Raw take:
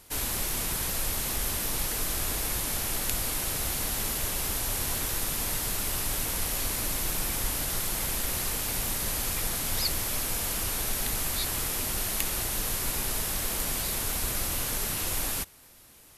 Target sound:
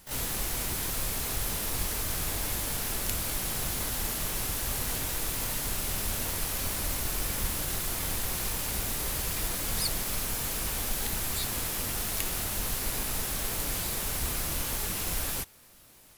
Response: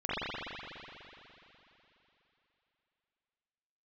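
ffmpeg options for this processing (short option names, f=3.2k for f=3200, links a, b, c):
-filter_complex "[0:a]asplit=2[a][b];[b]asetrate=88200,aresample=44100,atempo=0.5,volume=-2dB[c];[a][c]amix=inputs=2:normalize=0,volume=-3dB"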